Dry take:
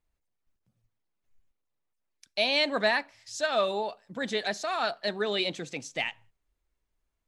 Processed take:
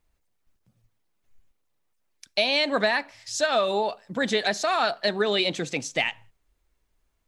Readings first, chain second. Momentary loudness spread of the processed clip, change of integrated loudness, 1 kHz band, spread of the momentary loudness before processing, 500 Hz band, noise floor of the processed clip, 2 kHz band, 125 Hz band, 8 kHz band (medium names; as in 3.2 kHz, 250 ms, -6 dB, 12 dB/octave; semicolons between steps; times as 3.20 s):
7 LU, +4.5 dB, +5.0 dB, 12 LU, +4.5 dB, -73 dBFS, +4.0 dB, +6.5 dB, +7.5 dB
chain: compression, threshold -27 dBFS, peak gain reduction 7.5 dB; trim +8 dB